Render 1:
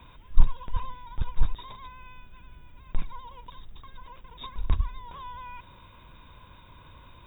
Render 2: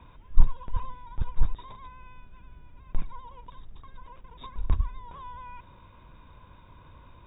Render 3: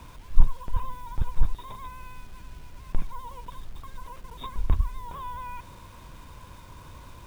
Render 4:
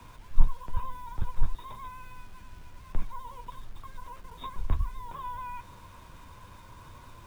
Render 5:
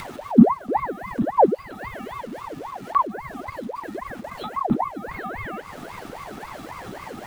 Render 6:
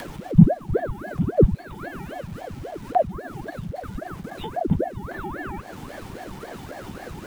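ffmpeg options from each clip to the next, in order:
ffmpeg -i in.wav -af "lowpass=frequency=1500:poles=1" out.wav
ffmpeg -i in.wav -filter_complex "[0:a]asplit=2[link_01][link_02];[link_02]acompressor=threshold=-30dB:ratio=6,volume=-1dB[link_03];[link_01][link_03]amix=inputs=2:normalize=0,acrusher=bits=8:mix=0:aa=0.000001" out.wav
ffmpeg -i in.wav -filter_complex "[0:a]acrossover=split=130|500|1600[link_01][link_02][link_03][link_04];[link_03]crystalizer=i=7:c=0[link_05];[link_01][link_02][link_05][link_04]amix=inputs=4:normalize=0,flanger=delay=8.1:depth=3.5:regen=-46:speed=0.57:shape=triangular" out.wav
ffmpeg -i in.wav -af "acompressor=mode=upward:threshold=-28dB:ratio=2.5,aeval=exprs='val(0)*sin(2*PI*670*n/s+670*0.7/3.7*sin(2*PI*3.7*n/s))':channel_layout=same,volume=5dB" out.wav
ffmpeg -i in.wav -af "afreqshift=-400" out.wav

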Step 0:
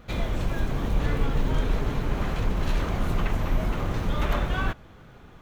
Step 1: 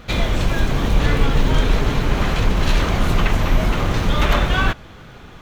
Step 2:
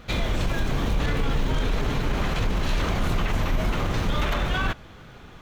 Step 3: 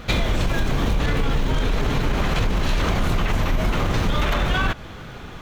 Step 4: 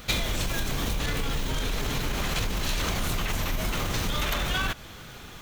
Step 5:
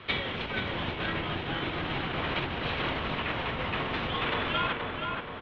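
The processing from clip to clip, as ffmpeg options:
ffmpeg -i in.wav -af "equalizer=frequency=4200:width_type=o:width=2.5:gain=6,volume=8dB" out.wav
ffmpeg -i in.wav -af "alimiter=limit=-10.5dB:level=0:latency=1:release=20,volume=-5dB" out.wav
ffmpeg -i in.wav -af "acompressor=threshold=-25dB:ratio=6,volume=8.5dB" out.wav
ffmpeg -i in.wav -af "crystalizer=i=4:c=0,volume=-8.5dB" out.wav
ffmpeg -i in.wav -filter_complex "[0:a]highpass=frequency=200:width_type=q:width=0.5412,highpass=frequency=200:width_type=q:width=1.307,lowpass=frequency=3500:width_type=q:width=0.5176,lowpass=frequency=3500:width_type=q:width=0.7071,lowpass=frequency=3500:width_type=q:width=1.932,afreqshift=-120,asplit=2[link_01][link_02];[link_02]adelay=476,lowpass=frequency=2200:poles=1,volume=-3dB,asplit=2[link_03][link_04];[link_04]adelay=476,lowpass=frequency=2200:poles=1,volume=0.54,asplit=2[link_05][link_06];[link_06]adelay=476,lowpass=frequency=2200:poles=1,volume=0.54,asplit=2[link_07][link_08];[link_08]adelay=476,lowpass=frequency=2200:poles=1,volume=0.54,asplit=2[link_09][link_10];[link_10]adelay=476,lowpass=frequency=2200:poles=1,volume=0.54,asplit=2[link_11][link_12];[link_12]adelay=476,lowpass=frequency=2200:poles=1,volume=0.54,asplit=2[link_13][link_14];[link_14]adelay=476,lowpass=frequency=2200:poles=1,volume=0.54[link_15];[link_01][link_03][link_05][link_07][link_09][link_11][link_13][link_15]amix=inputs=8:normalize=0" out.wav

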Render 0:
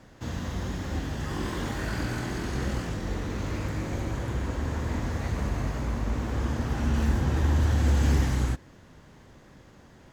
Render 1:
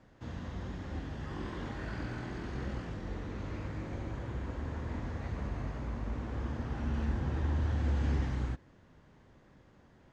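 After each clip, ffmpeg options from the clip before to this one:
ffmpeg -i in.wav -filter_complex "[0:a]acrossover=split=6900[link_01][link_02];[link_02]acompressor=threshold=-60dB:ratio=4:attack=1:release=60[link_03];[link_01][link_03]amix=inputs=2:normalize=0,aemphasis=mode=reproduction:type=50fm,volume=-8.5dB" out.wav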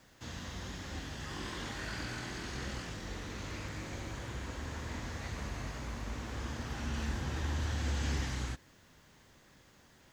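ffmpeg -i in.wav -af "crystalizer=i=9:c=0,volume=-4dB" out.wav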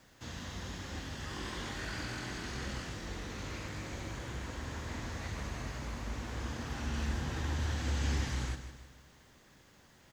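ffmpeg -i in.wav -af "aecho=1:1:156|312|468|624|780:0.282|0.135|0.0649|0.0312|0.015" out.wav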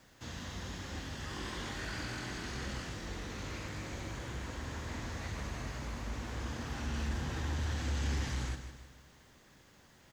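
ffmpeg -i in.wav -af "asoftclip=type=tanh:threshold=-25.5dB" out.wav

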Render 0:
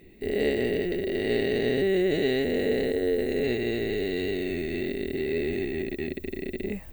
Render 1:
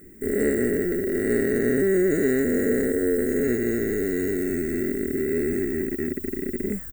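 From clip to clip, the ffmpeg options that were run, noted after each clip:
ffmpeg -i in.wav -af "firequalizer=gain_entry='entry(160,0);entry(240,5);entry(860,-11);entry(1400,12);entry(3100,-27);entry(7200,14);entry(12000,11)':delay=0.05:min_phase=1,volume=2dB" out.wav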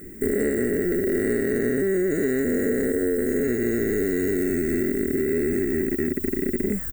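ffmpeg -i in.wav -af "acompressor=threshold=-27dB:ratio=6,volume=7dB" out.wav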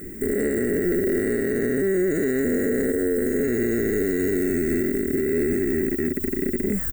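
ffmpeg -i in.wav -af "alimiter=limit=-18dB:level=0:latency=1:release=63,volume=4dB" out.wav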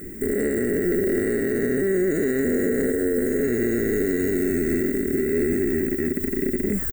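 ffmpeg -i in.wav -af "aecho=1:1:650:0.237" out.wav

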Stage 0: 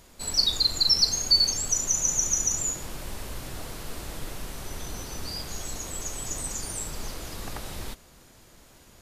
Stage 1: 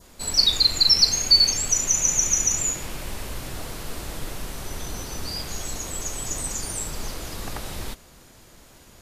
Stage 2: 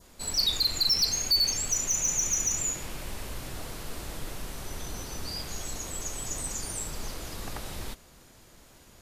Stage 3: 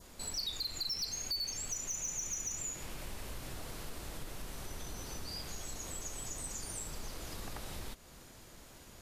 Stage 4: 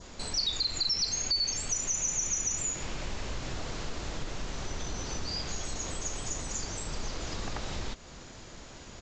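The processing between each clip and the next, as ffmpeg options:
ffmpeg -i in.wav -af "adynamicequalizer=threshold=0.00708:dfrequency=2400:dqfactor=1.8:tfrequency=2400:tqfactor=1.8:attack=5:release=100:ratio=0.375:range=3.5:mode=boostabove:tftype=bell,volume=3.5dB" out.wav
ffmpeg -i in.wav -af "asoftclip=type=tanh:threshold=-14dB,volume=-4.5dB" out.wav
ffmpeg -i in.wav -af "acompressor=threshold=-42dB:ratio=2.5" out.wav
ffmpeg -i in.wav -af "aresample=16000,aresample=44100,volume=8dB" out.wav

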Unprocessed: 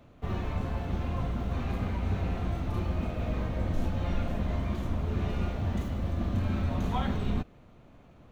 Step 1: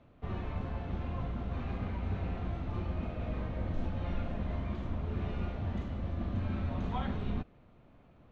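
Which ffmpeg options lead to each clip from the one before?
ffmpeg -i in.wav -af "lowpass=3800,volume=-5dB" out.wav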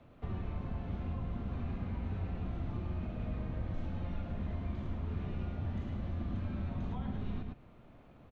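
ffmpeg -i in.wav -filter_complex "[0:a]aecho=1:1:108:0.473,acrossover=split=310|810[link_01][link_02][link_03];[link_01]acompressor=threshold=-36dB:ratio=4[link_04];[link_02]acompressor=threshold=-56dB:ratio=4[link_05];[link_03]acompressor=threshold=-58dB:ratio=4[link_06];[link_04][link_05][link_06]amix=inputs=3:normalize=0,volume=2dB" out.wav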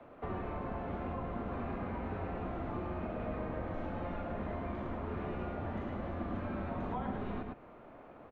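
ffmpeg -i in.wav -filter_complex "[0:a]acrossover=split=300 2100:gain=0.158 1 0.158[link_01][link_02][link_03];[link_01][link_02][link_03]amix=inputs=3:normalize=0,volume=10dB" out.wav

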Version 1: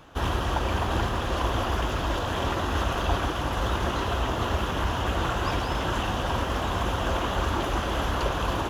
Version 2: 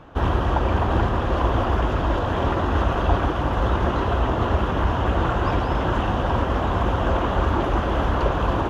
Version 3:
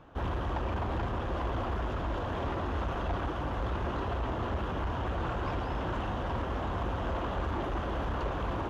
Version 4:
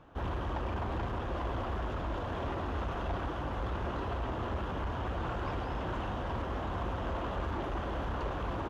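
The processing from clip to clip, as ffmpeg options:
ffmpeg -i in.wav -af "lowpass=frequency=3600:poles=1,highshelf=frequency=2200:gain=-10.5,volume=6.5dB" out.wav
ffmpeg -i in.wav -af "asoftclip=type=tanh:threshold=-17.5dB,volume=-9dB" out.wav
ffmpeg -i in.wav -filter_complex "[0:a]asplit=2[link_01][link_02];[link_02]adelay=100,highpass=300,lowpass=3400,asoftclip=type=hard:threshold=-35.5dB,volume=-9dB[link_03];[link_01][link_03]amix=inputs=2:normalize=0,volume=-2.5dB" out.wav

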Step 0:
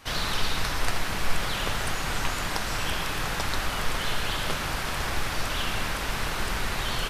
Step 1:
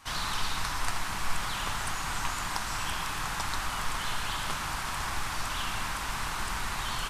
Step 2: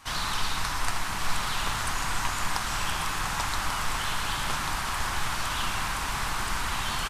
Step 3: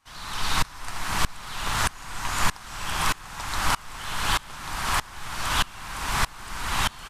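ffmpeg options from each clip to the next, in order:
ffmpeg -i in.wav -af "equalizer=frequency=500:width_type=o:width=1:gain=-8,equalizer=frequency=1000:width_type=o:width=1:gain=8,equalizer=frequency=8000:width_type=o:width=1:gain=6,volume=-6dB" out.wav
ffmpeg -i in.wav -af "aecho=1:1:1140:0.473,volume=2.5dB" out.wav
ffmpeg -i in.wav -af "aeval=exprs='val(0)*pow(10,-26*if(lt(mod(-1.6*n/s,1),2*abs(-1.6)/1000),1-mod(-1.6*n/s,1)/(2*abs(-1.6)/1000),(mod(-1.6*n/s,1)-2*abs(-1.6)/1000)/(1-2*abs(-1.6)/1000))/20)':channel_layout=same,volume=9dB" out.wav

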